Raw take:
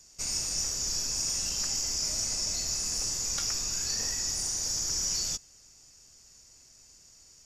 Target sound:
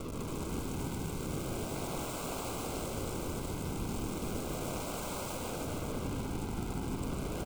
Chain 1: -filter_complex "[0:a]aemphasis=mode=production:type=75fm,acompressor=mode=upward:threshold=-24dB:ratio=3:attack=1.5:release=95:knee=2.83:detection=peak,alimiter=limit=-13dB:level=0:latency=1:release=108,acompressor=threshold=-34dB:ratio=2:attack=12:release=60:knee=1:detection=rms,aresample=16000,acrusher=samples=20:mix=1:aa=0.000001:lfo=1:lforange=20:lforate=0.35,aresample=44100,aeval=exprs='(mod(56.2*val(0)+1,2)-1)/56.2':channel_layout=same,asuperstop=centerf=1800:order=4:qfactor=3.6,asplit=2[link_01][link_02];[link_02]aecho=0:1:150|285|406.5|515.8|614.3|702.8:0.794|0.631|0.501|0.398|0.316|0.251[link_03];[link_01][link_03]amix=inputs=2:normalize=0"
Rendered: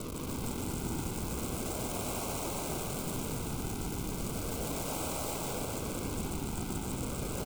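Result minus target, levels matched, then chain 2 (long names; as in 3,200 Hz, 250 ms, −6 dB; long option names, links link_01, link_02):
downward compressor: peak gain reduction +7.5 dB; 8,000 Hz band +3.0 dB
-filter_complex "[0:a]aemphasis=mode=production:type=75fm,acompressor=mode=upward:threshold=-24dB:ratio=3:attack=1.5:release=95:knee=2.83:detection=peak,alimiter=limit=-13dB:level=0:latency=1:release=108,aresample=16000,acrusher=samples=20:mix=1:aa=0.000001:lfo=1:lforange=20:lforate=0.35,aresample=44100,aeval=exprs='(mod(56.2*val(0)+1,2)-1)/56.2':channel_layout=same,asuperstop=centerf=1800:order=4:qfactor=3.6,highshelf=frequency=4400:gain=-8,asplit=2[link_01][link_02];[link_02]aecho=0:1:150|285|406.5|515.8|614.3|702.8:0.794|0.631|0.501|0.398|0.316|0.251[link_03];[link_01][link_03]amix=inputs=2:normalize=0"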